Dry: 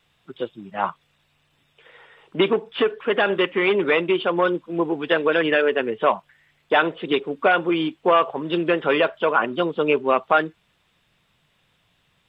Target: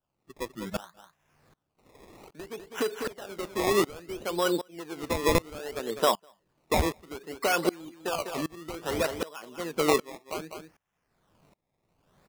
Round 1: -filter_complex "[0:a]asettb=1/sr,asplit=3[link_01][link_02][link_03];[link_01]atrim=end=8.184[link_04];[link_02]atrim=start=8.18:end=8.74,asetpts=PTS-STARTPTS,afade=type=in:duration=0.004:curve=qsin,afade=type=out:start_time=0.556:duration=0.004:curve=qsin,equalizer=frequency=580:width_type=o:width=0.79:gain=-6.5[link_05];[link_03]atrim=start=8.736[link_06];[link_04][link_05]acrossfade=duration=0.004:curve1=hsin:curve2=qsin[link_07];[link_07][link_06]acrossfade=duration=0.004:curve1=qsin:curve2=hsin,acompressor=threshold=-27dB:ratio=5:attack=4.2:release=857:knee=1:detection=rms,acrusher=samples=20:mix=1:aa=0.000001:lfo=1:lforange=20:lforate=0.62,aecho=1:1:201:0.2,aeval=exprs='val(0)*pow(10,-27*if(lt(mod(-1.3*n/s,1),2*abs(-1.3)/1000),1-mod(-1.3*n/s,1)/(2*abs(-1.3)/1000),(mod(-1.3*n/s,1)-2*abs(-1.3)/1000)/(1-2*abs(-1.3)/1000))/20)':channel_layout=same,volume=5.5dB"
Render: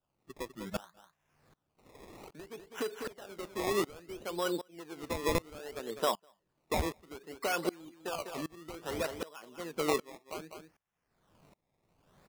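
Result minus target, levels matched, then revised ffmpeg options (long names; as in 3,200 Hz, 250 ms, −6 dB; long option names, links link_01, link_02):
downward compressor: peak gain reduction +7 dB
-filter_complex "[0:a]asettb=1/sr,asplit=3[link_01][link_02][link_03];[link_01]atrim=end=8.184[link_04];[link_02]atrim=start=8.18:end=8.74,asetpts=PTS-STARTPTS,afade=type=in:duration=0.004:curve=qsin,afade=type=out:start_time=0.556:duration=0.004:curve=qsin,equalizer=frequency=580:width_type=o:width=0.79:gain=-6.5[link_05];[link_03]atrim=start=8.736[link_06];[link_04][link_05]acrossfade=duration=0.004:curve1=hsin:curve2=qsin[link_07];[link_07][link_06]acrossfade=duration=0.004:curve1=qsin:curve2=hsin,acompressor=threshold=-18.5dB:ratio=5:attack=4.2:release=857:knee=1:detection=rms,acrusher=samples=20:mix=1:aa=0.000001:lfo=1:lforange=20:lforate=0.62,aecho=1:1:201:0.2,aeval=exprs='val(0)*pow(10,-27*if(lt(mod(-1.3*n/s,1),2*abs(-1.3)/1000),1-mod(-1.3*n/s,1)/(2*abs(-1.3)/1000),(mod(-1.3*n/s,1)-2*abs(-1.3)/1000)/(1-2*abs(-1.3)/1000))/20)':channel_layout=same,volume=5.5dB"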